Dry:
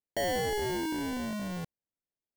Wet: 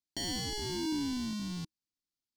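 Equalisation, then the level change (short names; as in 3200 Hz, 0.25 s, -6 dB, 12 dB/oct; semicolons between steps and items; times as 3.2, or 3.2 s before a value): EQ curve 200 Hz 0 dB, 310 Hz +3 dB, 550 Hz -23 dB, 950 Hz -4 dB, 1800 Hz -9 dB, 4600 Hz +9 dB, 16000 Hz -10 dB; -1.5 dB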